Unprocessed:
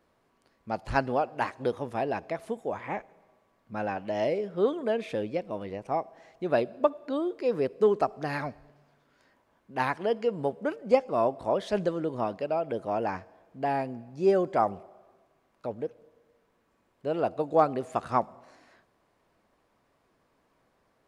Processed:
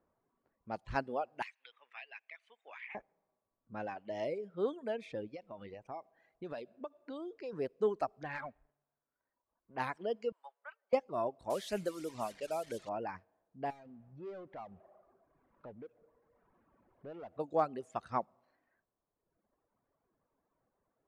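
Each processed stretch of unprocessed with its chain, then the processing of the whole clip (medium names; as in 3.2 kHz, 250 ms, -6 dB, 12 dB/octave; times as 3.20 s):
1.42–2.95 s: resonant high-pass 2.4 kHz, resonance Q 2.4 + three bands compressed up and down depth 100%
5.33–7.53 s: treble shelf 4.5 kHz +12 dB + compression 4:1, threshold -31 dBFS
8.23–9.78 s: low-pass 2.8 kHz 24 dB/octave + peaking EQ 190 Hz -7 dB 2.7 oct + waveshaping leveller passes 1
10.32–10.93 s: high-pass 1 kHz 24 dB/octave + tilt EQ -1.5 dB/octave
11.50–12.89 s: one-bit delta coder 64 kbps, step -38 dBFS + treble shelf 2.3 kHz +7 dB
13.70–17.39 s: compression 2:1, threshold -48 dBFS + distance through air 88 m + power-law waveshaper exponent 0.7
whole clip: level-controlled noise filter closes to 1.3 kHz, open at -25.5 dBFS; reverb removal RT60 1.4 s; trim -8.5 dB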